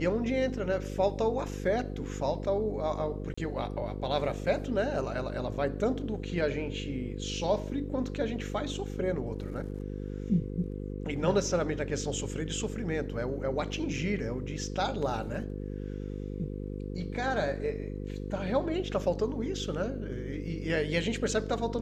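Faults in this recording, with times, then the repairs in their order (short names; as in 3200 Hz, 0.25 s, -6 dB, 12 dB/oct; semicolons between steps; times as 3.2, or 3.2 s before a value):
buzz 50 Hz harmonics 10 -37 dBFS
3.34–3.38 gap 35 ms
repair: de-hum 50 Hz, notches 10; interpolate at 3.34, 35 ms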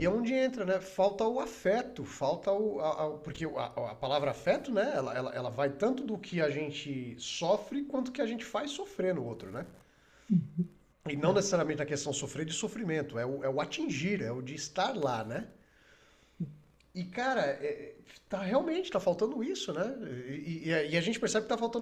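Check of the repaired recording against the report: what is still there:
none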